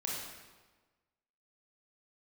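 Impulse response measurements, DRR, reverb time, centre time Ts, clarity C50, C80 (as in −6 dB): −4.0 dB, 1.3 s, 81 ms, −0.5 dB, 2.0 dB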